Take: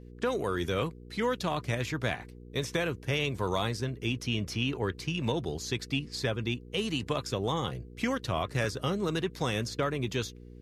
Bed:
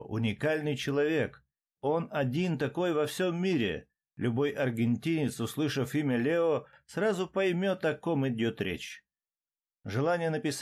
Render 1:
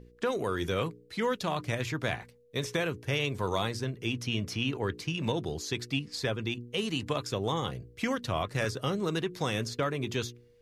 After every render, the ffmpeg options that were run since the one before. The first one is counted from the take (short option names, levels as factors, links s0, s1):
-af "bandreject=f=60:t=h:w=4,bandreject=f=120:t=h:w=4,bandreject=f=180:t=h:w=4,bandreject=f=240:t=h:w=4,bandreject=f=300:t=h:w=4,bandreject=f=360:t=h:w=4,bandreject=f=420:t=h:w=4"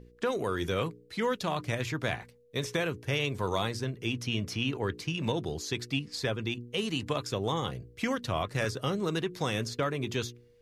-af anull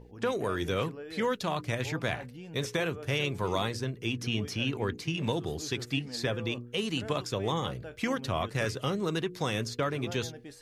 -filter_complex "[1:a]volume=0.168[s0];[0:a][s0]amix=inputs=2:normalize=0"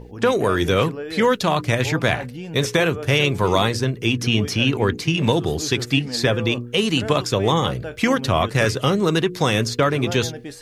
-af "volume=3.98"